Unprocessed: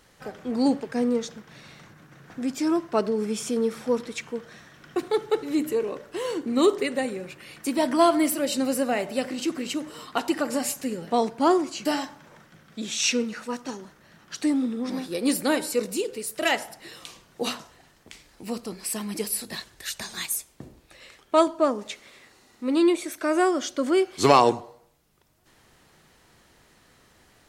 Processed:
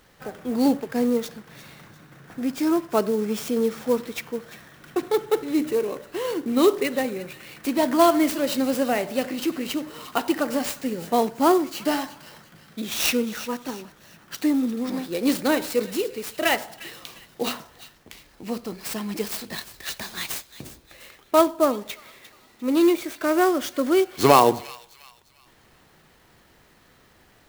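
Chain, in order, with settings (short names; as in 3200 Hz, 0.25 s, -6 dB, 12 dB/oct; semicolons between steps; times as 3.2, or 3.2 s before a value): median filter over 3 samples; thin delay 0.351 s, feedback 36%, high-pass 2300 Hz, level -13.5 dB; clock jitter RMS 0.027 ms; gain +2 dB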